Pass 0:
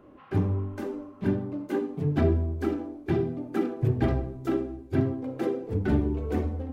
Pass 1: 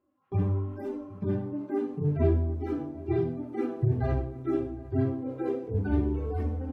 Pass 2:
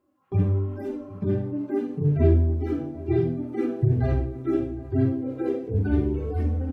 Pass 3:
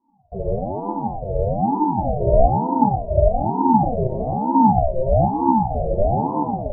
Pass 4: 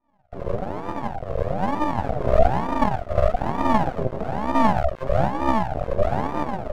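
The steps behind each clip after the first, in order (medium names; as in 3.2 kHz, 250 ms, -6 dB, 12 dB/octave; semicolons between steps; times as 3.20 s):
harmonic-percussive separation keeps harmonic; gate with hold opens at -36 dBFS; echo from a far wall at 130 m, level -19 dB
dynamic bell 980 Hz, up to -8 dB, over -52 dBFS, Q 1.7; doubling 49 ms -11 dB; trim +4.5 dB
FFT filter 110 Hz 0 dB, 330 Hz +15 dB, 1.1 kHz -29 dB; algorithmic reverb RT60 1.1 s, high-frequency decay 0.9×, pre-delay 10 ms, DRR -8 dB; ring modulator with a swept carrier 430 Hz, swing 40%, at 1.1 Hz; trim -7.5 dB
half-wave rectifier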